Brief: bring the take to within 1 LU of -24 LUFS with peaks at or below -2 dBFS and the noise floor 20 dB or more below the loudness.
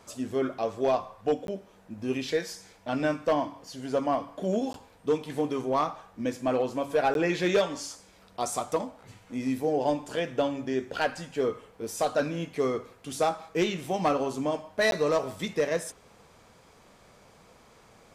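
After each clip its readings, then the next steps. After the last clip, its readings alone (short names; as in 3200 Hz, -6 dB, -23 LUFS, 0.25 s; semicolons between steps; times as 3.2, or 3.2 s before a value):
dropouts 4; longest dropout 12 ms; loudness -29.5 LUFS; peak -17.0 dBFS; loudness target -24.0 LUFS
-> interpolate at 1.47/4.73/7.14/14.91, 12 ms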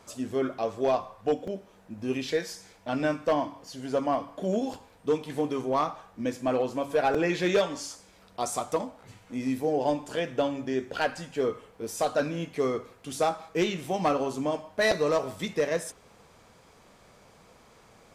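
dropouts 0; loudness -29.5 LUFS; peak -13.0 dBFS; loudness target -24.0 LUFS
-> gain +5.5 dB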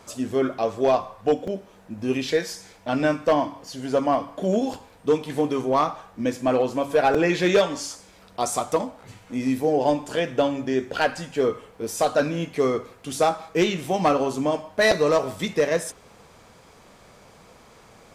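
loudness -24.0 LUFS; peak -7.5 dBFS; noise floor -52 dBFS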